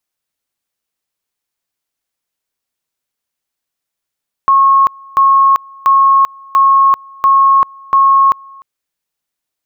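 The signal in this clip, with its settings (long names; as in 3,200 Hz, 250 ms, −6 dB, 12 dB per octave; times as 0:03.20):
tone at two levels in turn 1,090 Hz −5 dBFS, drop 27.5 dB, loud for 0.39 s, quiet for 0.30 s, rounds 6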